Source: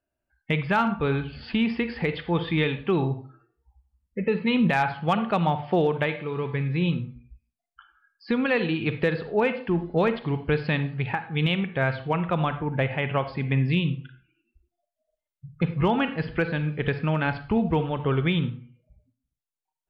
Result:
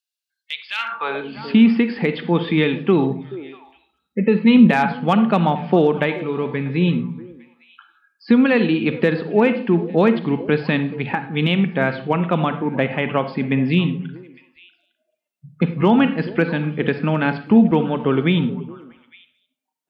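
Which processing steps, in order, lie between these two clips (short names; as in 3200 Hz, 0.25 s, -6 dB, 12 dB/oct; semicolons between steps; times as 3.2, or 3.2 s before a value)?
delay with a stepping band-pass 0.214 s, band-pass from 150 Hz, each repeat 1.4 oct, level -11.5 dB; high-pass sweep 3900 Hz -> 220 Hz, 0.68–1.39; gain +4.5 dB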